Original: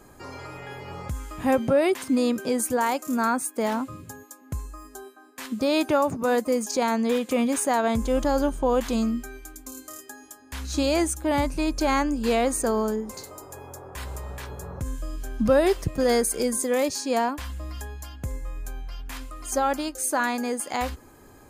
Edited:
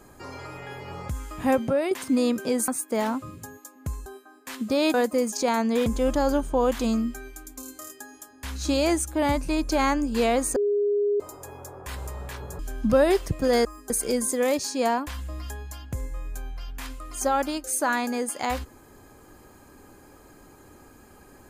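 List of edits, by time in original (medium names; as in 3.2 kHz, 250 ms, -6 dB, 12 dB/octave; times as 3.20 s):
1.50–1.91 s: fade out, to -6.5 dB
2.68–3.34 s: delete
4.72–4.97 s: move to 16.21 s
5.85–6.28 s: delete
7.20–7.95 s: delete
12.65–13.29 s: bleep 410 Hz -20 dBFS
14.68–15.15 s: delete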